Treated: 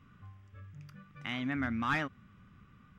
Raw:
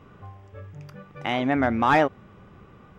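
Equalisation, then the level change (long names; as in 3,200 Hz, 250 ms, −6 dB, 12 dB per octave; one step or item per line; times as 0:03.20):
flat-topped bell 560 Hz −13.5 dB
−8.0 dB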